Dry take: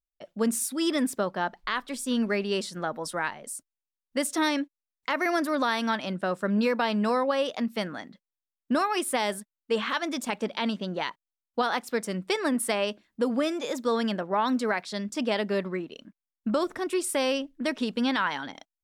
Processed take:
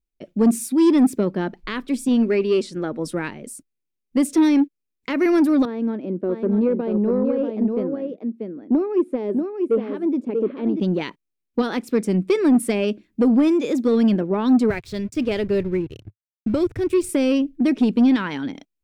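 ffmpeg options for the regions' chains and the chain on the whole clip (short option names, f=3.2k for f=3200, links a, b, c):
-filter_complex "[0:a]asettb=1/sr,asplit=3[a][b][c];[a]atrim=end=2.084[d];[b]atrim=start=2.08:end=2.99,asetpts=PTS-STARTPTS,afade=t=in:d=0.004:c=qsin,afade=t=out:st=0.906:d=0.004:c=qsin,lowpass=9.2k,equalizer=f=190:w=2.4:g=-8.5[e];[c]atrim=start=2.986[f];[d][e]acrossfade=d=0.004:c1=hsin:c2=qsin[g];[g][f]acrossfade=d=0.004:c1=qsin:c2=hsin,asettb=1/sr,asplit=3[h][i][j];[h]atrim=end=5.654[k];[i]atrim=start=5.65:end=10.8,asetpts=PTS-STARTPTS,afade=t=in:d=0.004:c=qsin,afade=t=out:st=5.146:d=0.004:c=qsin,bandpass=f=410:t=q:w=1.5,aecho=1:1:638:0.531,atrim=end_sample=227115[l];[j]atrim=start=10.796[m];[k][l]acrossfade=d=0.004:c1=hsin:c2=qsin[n];[n][m]acrossfade=d=0.004:c1=qsin:c2=hsin,asettb=1/sr,asplit=3[o][p][q];[o]atrim=end=14.704[r];[p]atrim=start=14.7:end=17.09,asetpts=PTS-STARTPTS,afade=t=in:d=0.004:c=qsin,afade=t=out:st=2.386:d=0.004:c=qsin,bandreject=f=1.1k:w=9.5,aeval=exprs='sgn(val(0))*max(abs(val(0))-0.00473,0)':c=same,lowshelf=f=150:t=q:w=3:g=12.5[s];[q]atrim=start=17.086[t];[r][s]acrossfade=d=0.004:c1=hsin:c2=qsin[u];[u][t]acrossfade=d=0.004:c1=qsin:c2=hsin,lowshelf=f=520:t=q:w=1.5:g=12.5,acontrast=80,equalizer=f=2.4k:w=4.8:g=7,volume=-7.5dB"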